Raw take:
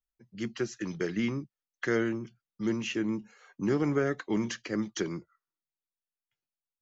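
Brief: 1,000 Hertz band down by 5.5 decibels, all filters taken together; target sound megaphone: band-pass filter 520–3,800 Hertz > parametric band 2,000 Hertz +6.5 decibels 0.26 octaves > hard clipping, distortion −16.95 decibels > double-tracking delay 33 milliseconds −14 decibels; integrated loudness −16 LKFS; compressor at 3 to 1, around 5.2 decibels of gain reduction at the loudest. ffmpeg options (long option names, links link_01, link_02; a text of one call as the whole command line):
ffmpeg -i in.wav -filter_complex "[0:a]equalizer=frequency=1000:width_type=o:gain=-8,acompressor=threshold=-31dB:ratio=3,highpass=520,lowpass=3800,equalizer=frequency=2000:width_type=o:width=0.26:gain=6.5,asoftclip=type=hard:threshold=-31dB,asplit=2[link_01][link_02];[link_02]adelay=33,volume=-14dB[link_03];[link_01][link_03]amix=inputs=2:normalize=0,volume=26.5dB" out.wav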